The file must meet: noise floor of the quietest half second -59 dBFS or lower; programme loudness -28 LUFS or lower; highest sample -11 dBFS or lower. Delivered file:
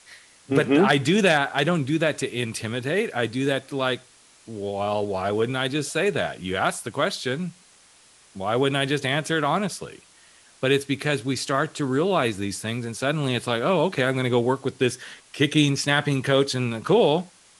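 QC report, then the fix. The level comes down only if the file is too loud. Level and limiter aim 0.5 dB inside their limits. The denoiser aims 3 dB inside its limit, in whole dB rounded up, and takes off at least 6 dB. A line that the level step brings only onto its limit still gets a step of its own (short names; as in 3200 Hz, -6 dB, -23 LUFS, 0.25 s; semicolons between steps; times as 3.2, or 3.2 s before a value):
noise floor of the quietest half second -55 dBFS: fail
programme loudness -23.5 LUFS: fail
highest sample -5.0 dBFS: fail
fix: gain -5 dB; limiter -11.5 dBFS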